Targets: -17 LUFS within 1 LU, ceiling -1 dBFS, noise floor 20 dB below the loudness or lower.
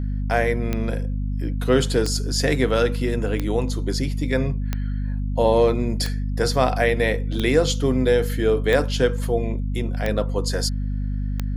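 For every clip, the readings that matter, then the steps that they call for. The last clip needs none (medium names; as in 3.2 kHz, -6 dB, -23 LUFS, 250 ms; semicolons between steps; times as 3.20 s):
clicks found 9; hum 50 Hz; highest harmonic 250 Hz; hum level -22 dBFS; loudness -22.5 LUFS; peak level -5.0 dBFS; loudness target -17.0 LUFS
-> de-click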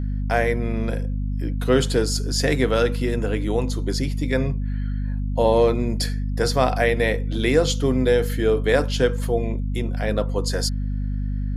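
clicks found 0; hum 50 Hz; highest harmonic 250 Hz; hum level -22 dBFS
-> hum notches 50/100/150/200/250 Hz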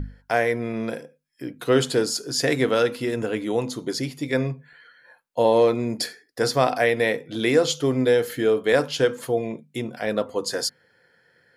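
hum not found; loudness -23.5 LUFS; peak level -6.0 dBFS; loudness target -17.0 LUFS
-> trim +6.5 dB; peak limiter -1 dBFS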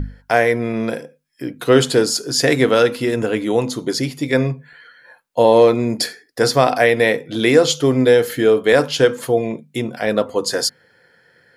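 loudness -17.0 LUFS; peak level -1.0 dBFS; noise floor -58 dBFS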